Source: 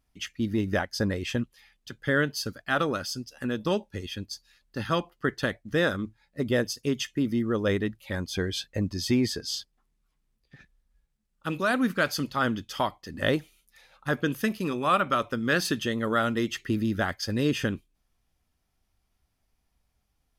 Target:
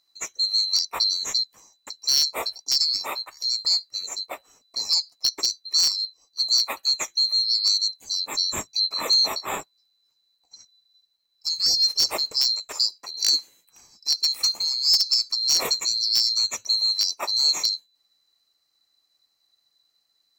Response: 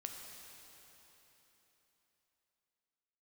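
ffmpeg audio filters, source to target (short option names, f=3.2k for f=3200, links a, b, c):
-filter_complex "[0:a]afftfilt=real='real(if(lt(b,736),b+184*(1-2*mod(floor(b/184),2)),b),0)':imag='imag(if(lt(b,736),b+184*(1-2*mod(floor(b/184),2)),b),0)':win_size=2048:overlap=0.75,asplit=2[a][b];[b]aeval=exprs='(mod(4.47*val(0)+1,2)-1)/4.47':c=same,volume=-5dB[c];[a][c]amix=inputs=2:normalize=0"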